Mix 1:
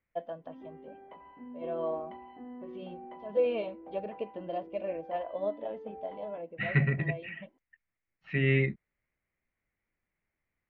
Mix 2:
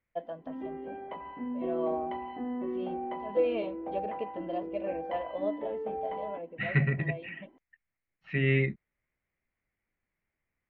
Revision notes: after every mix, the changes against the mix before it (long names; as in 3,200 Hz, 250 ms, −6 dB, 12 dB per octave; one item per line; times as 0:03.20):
background +10.0 dB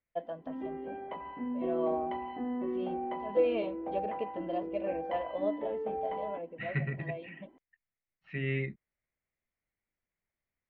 second voice −7.0 dB